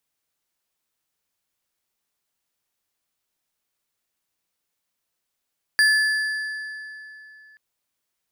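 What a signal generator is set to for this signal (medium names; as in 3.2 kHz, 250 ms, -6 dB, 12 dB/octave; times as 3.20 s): metal hit bar, length 1.78 s, lowest mode 1.73 kHz, modes 4, decay 3.02 s, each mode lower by 7 dB, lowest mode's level -13.5 dB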